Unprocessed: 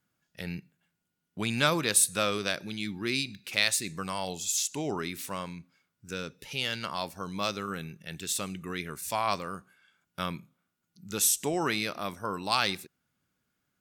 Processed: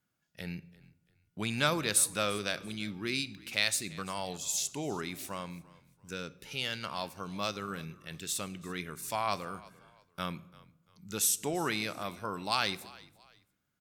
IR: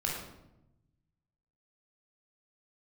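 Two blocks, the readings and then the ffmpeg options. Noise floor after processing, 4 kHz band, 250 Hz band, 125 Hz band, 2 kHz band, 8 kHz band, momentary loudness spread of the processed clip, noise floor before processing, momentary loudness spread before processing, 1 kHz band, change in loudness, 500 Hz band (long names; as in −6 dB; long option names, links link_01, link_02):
−77 dBFS, −3.5 dB, −3.5 dB, −3.0 dB, −3.5 dB, −3.5 dB, 15 LU, −81 dBFS, 15 LU, −3.5 dB, −3.5 dB, −3.5 dB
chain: -filter_complex "[0:a]asplit=3[link_01][link_02][link_03];[link_02]adelay=341,afreqshift=-40,volume=-21.5dB[link_04];[link_03]adelay=682,afreqshift=-80,volume=-31.4dB[link_05];[link_01][link_04][link_05]amix=inputs=3:normalize=0,asplit=2[link_06][link_07];[1:a]atrim=start_sample=2205[link_08];[link_07][link_08]afir=irnorm=-1:irlink=0,volume=-21.5dB[link_09];[link_06][link_09]amix=inputs=2:normalize=0,volume=-4dB"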